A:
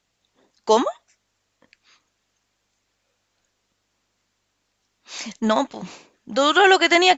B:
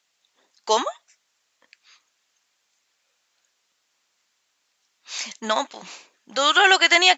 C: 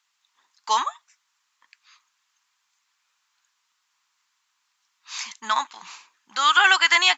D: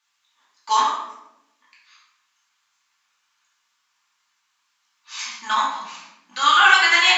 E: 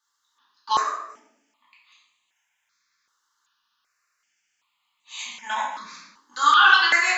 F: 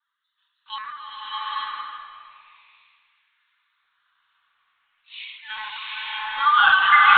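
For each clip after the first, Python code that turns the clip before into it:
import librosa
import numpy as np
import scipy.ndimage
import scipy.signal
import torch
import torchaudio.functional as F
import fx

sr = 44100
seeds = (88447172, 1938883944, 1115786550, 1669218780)

y1 = fx.highpass(x, sr, hz=1400.0, slope=6)
y1 = F.gain(torch.from_numpy(y1), 3.5).numpy()
y2 = fx.low_shelf_res(y1, sr, hz=760.0, db=-9.5, q=3.0)
y2 = F.gain(torch.from_numpy(y2), -2.5).numpy()
y3 = fx.room_shoebox(y2, sr, seeds[0], volume_m3=280.0, walls='mixed', distance_m=2.5)
y3 = F.gain(torch.from_numpy(y3), -4.5).numpy()
y4 = fx.phaser_held(y3, sr, hz=2.6, low_hz=660.0, high_hz=5300.0)
y5 = fx.filter_lfo_highpass(y4, sr, shape='sine', hz=0.43, low_hz=590.0, high_hz=2400.0, q=1.3)
y5 = fx.lpc_vocoder(y5, sr, seeds[1], excitation='pitch_kept', order=16)
y5 = fx.rev_bloom(y5, sr, seeds[2], attack_ms=840, drr_db=-7.0)
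y5 = F.gain(torch.from_numpy(y5), -2.5).numpy()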